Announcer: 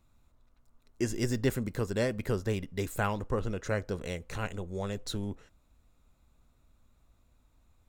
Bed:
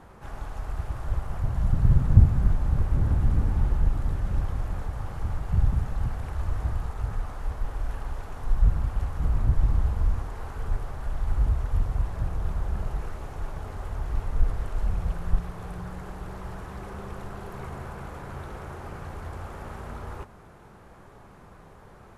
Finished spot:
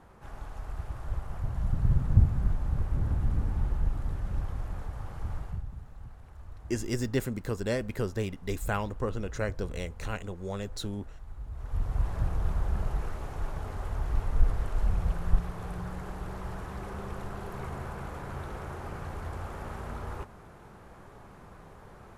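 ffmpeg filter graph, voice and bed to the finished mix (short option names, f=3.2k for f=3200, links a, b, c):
-filter_complex "[0:a]adelay=5700,volume=-0.5dB[a];[1:a]volume=11.5dB,afade=t=out:st=5.41:d=0.21:silence=0.251189,afade=t=in:st=11.5:d=0.61:silence=0.141254[b];[a][b]amix=inputs=2:normalize=0"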